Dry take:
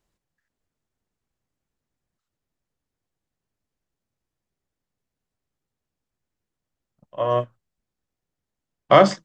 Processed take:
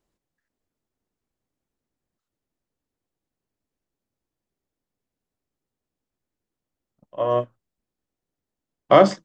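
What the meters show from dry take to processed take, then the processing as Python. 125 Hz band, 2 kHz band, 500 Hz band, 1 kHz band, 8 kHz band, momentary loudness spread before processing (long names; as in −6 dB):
−2.0 dB, −3.0 dB, +0.5 dB, −1.0 dB, can't be measured, 15 LU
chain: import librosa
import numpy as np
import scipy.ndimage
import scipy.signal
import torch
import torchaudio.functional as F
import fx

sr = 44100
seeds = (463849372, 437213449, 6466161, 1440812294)

y = fx.curve_eq(x, sr, hz=(150.0, 280.0, 1600.0), db=(0, 6, 0))
y = y * librosa.db_to_amplitude(-3.0)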